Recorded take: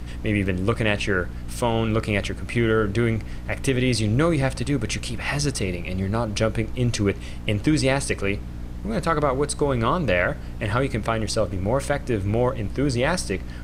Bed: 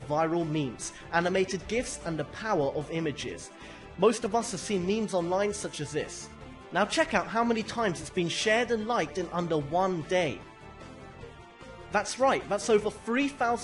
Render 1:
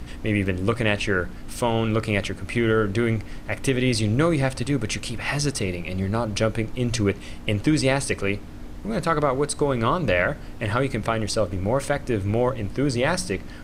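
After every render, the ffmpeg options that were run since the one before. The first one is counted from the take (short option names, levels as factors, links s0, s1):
-af "bandreject=f=60:t=h:w=4,bandreject=f=120:t=h:w=4,bandreject=f=180:t=h:w=4"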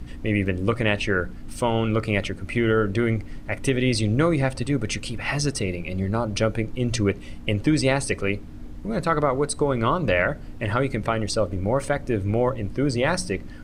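-af "afftdn=nr=7:nf=-37"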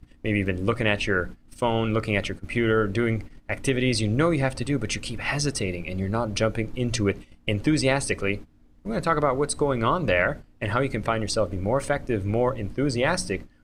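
-af "lowshelf=f=390:g=-2.5,agate=range=0.141:threshold=0.0224:ratio=16:detection=peak"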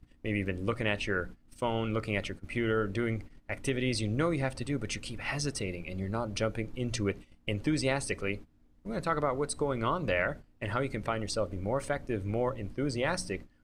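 -af "volume=0.422"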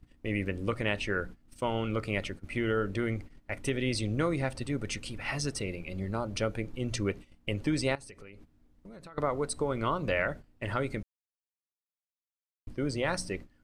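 -filter_complex "[0:a]asettb=1/sr,asplit=3[s0][s1][s2];[s0]atrim=end=7.954[s3];[s1]atrim=start=7.95:end=9.18,asetpts=PTS-STARTPTS,afade=t=in:d=0.004:c=qsin,afade=t=out:st=1.226:d=0.004:c=qsin,acompressor=threshold=0.00631:ratio=16:attack=3.2:release=140:knee=1:detection=peak[s4];[s2]atrim=start=9.176[s5];[s3][s4]acrossfade=d=0.004:c1=hsin:c2=qsin[s6];[s6][s5]acrossfade=d=0.004:c1=qsin:c2=hsin,asplit=3[s7][s8][s9];[s7]atrim=end=11.03,asetpts=PTS-STARTPTS,afade=t=out:st=11.026:d=0.004:c=hsin[s10];[s8]atrim=start=11.03:end=12.67,asetpts=PTS-STARTPTS,volume=0[s11];[s9]atrim=start=12.67,asetpts=PTS-STARTPTS,afade=t=in:d=0.004:c=hsin[s12];[s10][s11][s12]concat=n=3:v=0:a=1"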